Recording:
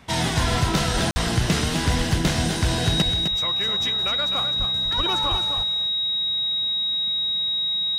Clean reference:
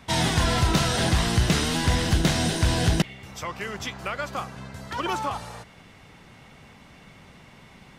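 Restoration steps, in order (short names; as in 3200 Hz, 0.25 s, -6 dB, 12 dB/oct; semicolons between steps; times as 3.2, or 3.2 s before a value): notch 3800 Hz, Q 30; de-plosive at 0.51/0.93/1.41/1.97/3.04/4.58/4.96/5.3; interpolate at 1.11, 50 ms; inverse comb 0.257 s -7.5 dB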